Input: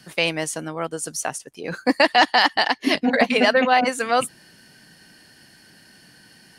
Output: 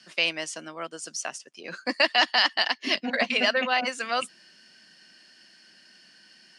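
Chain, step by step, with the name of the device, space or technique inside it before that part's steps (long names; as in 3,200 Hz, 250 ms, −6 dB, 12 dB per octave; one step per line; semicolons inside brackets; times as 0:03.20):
television speaker (loudspeaker in its box 220–8,000 Hz, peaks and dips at 280 Hz −8 dB, 450 Hz −8 dB, 830 Hz −7 dB, 2,800 Hz +5 dB, 5,100 Hz +6 dB)
level −5 dB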